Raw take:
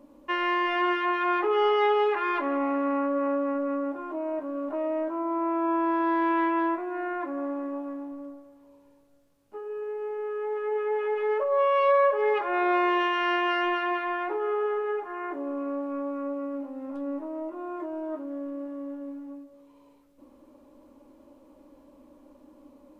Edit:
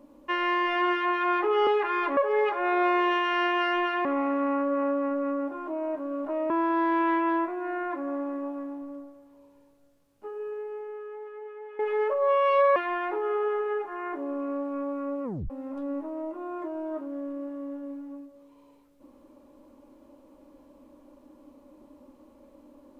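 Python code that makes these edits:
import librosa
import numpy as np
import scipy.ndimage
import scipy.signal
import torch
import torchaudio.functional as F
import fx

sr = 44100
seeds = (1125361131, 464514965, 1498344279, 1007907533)

y = fx.edit(x, sr, fx.cut(start_s=1.67, length_s=0.32),
    fx.cut(start_s=4.94, length_s=0.86),
    fx.fade_out_to(start_s=9.71, length_s=1.38, curve='qua', floor_db=-15.0),
    fx.move(start_s=12.06, length_s=1.88, to_s=2.49),
    fx.tape_stop(start_s=16.42, length_s=0.26), tone=tone)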